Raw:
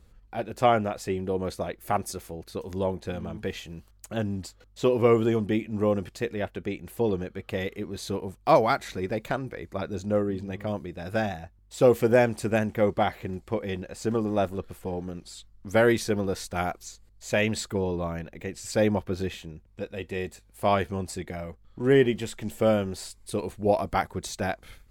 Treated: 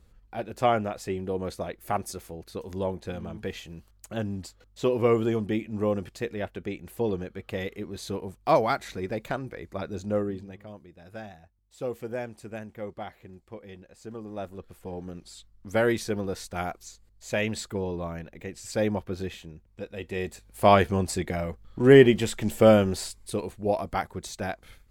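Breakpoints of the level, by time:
0:10.27 −2 dB
0:10.67 −13.5 dB
0:14.13 −13.5 dB
0:15.10 −3 dB
0:19.88 −3 dB
0:20.65 +5.5 dB
0:22.95 +5.5 dB
0:23.55 −3 dB

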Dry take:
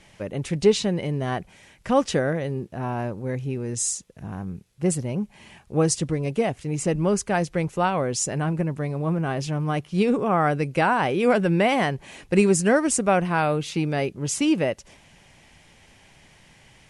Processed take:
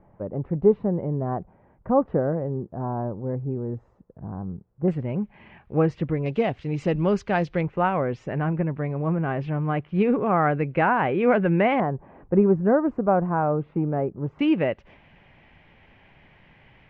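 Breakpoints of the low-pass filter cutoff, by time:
low-pass filter 24 dB per octave
1,100 Hz
from 0:04.88 2,400 Hz
from 0:06.26 3,900 Hz
from 0:07.61 2,400 Hz
from 0:11.80 1,200 Hz
from 0:14.39 2,700 Hz

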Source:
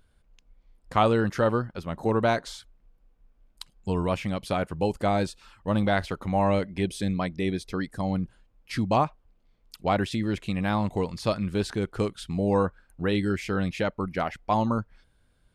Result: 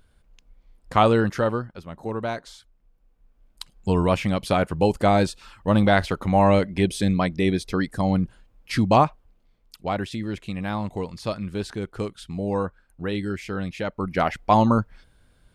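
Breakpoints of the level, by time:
0:01.18 +4 dB
0:01.89 −5 dB
0:02.53 −5 dB
0:03.89 +6 dB
0:09.05 +6 dB
0:09.89 −2 dB
0:13.81 −2 dB
0:14.26 +7 dB

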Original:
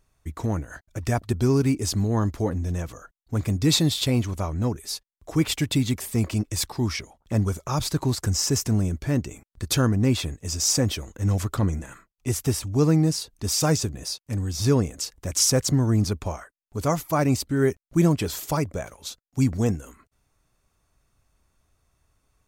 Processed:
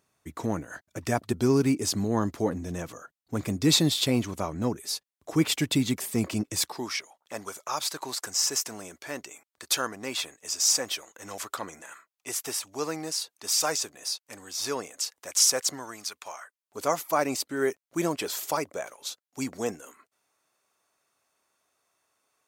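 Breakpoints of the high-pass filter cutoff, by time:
0:06.55 180 Hz
0:06.96 690 Hz
0:15.72 690 Hz
0:16.11 1,500 Hz
0:16.81 440 Hz

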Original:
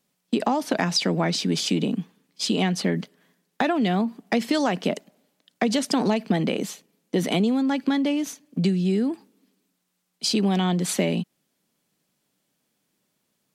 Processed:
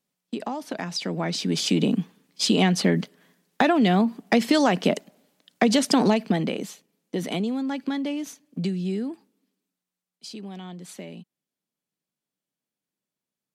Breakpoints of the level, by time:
0:00.88 −8 dB
0:01.88 +3 dB
0:06.04 +3 dB
0:06.69 −5 dB
0:08.92 −5 dB
0:10.30 −16 dB

